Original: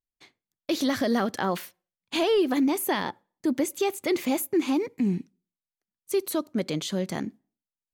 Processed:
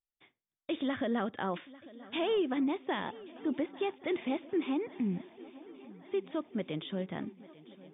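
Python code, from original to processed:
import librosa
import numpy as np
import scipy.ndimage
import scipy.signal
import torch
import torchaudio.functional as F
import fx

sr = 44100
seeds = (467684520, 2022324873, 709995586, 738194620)

y = fx.brickwall_lowpass(x, sr, high_hz=3700.0)
y = fx.echo_swing(y, sr, ms=1129, ratio=3, feedback_pct=59, wet_db=-20)
y = y * 10.0 ** (-7.5 / 20.0)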